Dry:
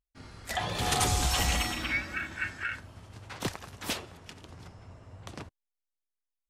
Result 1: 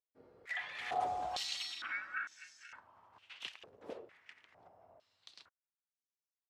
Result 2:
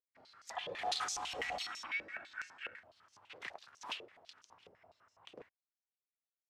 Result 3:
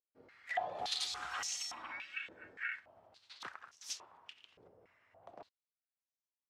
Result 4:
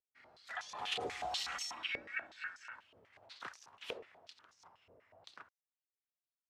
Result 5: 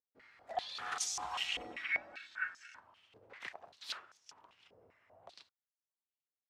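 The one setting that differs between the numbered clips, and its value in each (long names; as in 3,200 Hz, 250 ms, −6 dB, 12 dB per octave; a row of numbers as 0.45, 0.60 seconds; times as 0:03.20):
band-pass on a step sequencer, speed: 2.2, 12, 3.5, 8.2, 5.1 Hertz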